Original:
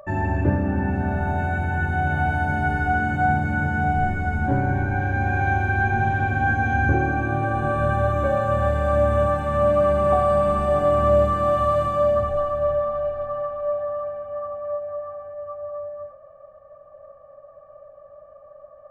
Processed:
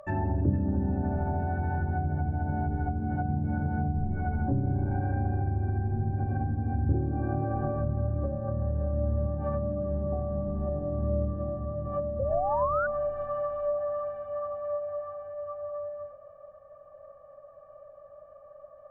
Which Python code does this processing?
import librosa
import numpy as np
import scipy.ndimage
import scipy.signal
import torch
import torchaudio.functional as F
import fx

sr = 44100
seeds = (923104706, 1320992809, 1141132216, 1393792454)

y = fx.env_lowpass_down(x, sr, base_hz=330.0, full_db=-17.0)
y = y + 10.0 ** (-17.5 / 20.0) * np.pad(y, (int(462 * sr / 1000.0), 0))[:len(y)]
y = fx.spec_paint(y, sr, seeds[0], shape='rise', start_s=12.19, length_s=0.68, low_hz=520.0, high_hz=1500.0, level_db=-25.0)
y = y * 10.0 ** (-4.5 / 20.0)